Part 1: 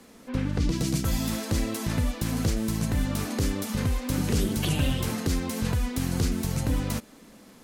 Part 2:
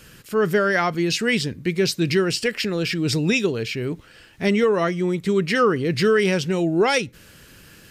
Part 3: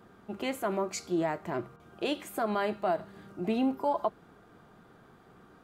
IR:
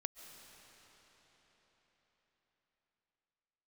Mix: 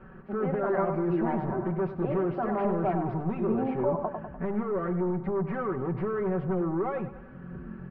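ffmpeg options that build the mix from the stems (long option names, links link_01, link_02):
-filter_complex "[0:a]equalizer=frequency=160:width_type=o:width=2.5:gain=8,adelay=1350,volume=-15dB[link_01];[1:a]acompressor=threshold=-20dB:ratio=6,asoftclip=type=tanh:threshold=-28.5dB,equalizer=frequency=1200:width_type=o:width=0.25:gain=3.5,volume=-0.5dB,asplit=3[link_02][link_03][link_04];[link_03]volume=-13dB[link_05];[2:a]volume=-1.5dB,asplit=2[link_06][link_07];[link_07]volume=-5.5dB[link_08];[link_04]apad=whole_len=396323[link_09];[link_01][link_09]sidechaincompress=threshold=-48dB:ratio=8:attack=16:release=752[link_10];[link_05][link_08]amix=inputs=2:normalize=0,aecho=0:1:99|198|297|396|495|594|693:1|0.51|0.26|0.133|0.0677|0.0345|0.0176[link_11];[link_10][link_02][link_06][link_11]amix=inputs=4:normalize=0,lowpass=frequency=1400:width=0.5412,lowpass=frequency=1400:width=1.3066,bandreject=frequency=50:width_type=h:width=6,bandreject=frequency=100:width_type=h:width=6,bandreject=frequency=150:width_type=h:width=6,bandreject=frequency=200:width_type=h:width=6,aecho=1:1:5.3:0.71"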